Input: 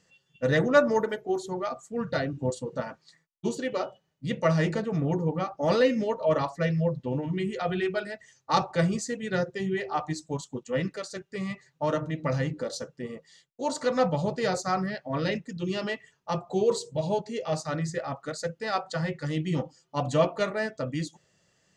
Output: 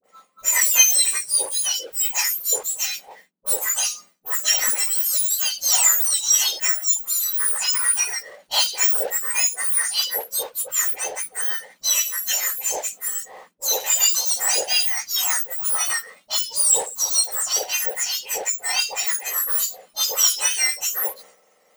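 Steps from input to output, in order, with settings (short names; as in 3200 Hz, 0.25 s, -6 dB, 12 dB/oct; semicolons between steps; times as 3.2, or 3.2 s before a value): spectrum mirrored in octaves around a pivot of 1900 Hz; expander -57 dBFS; power-law curve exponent 0.7; high shelf 2100 Hz +10 dB; dispersion highs, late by 41 ms, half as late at 890 Hz; gain -1 dB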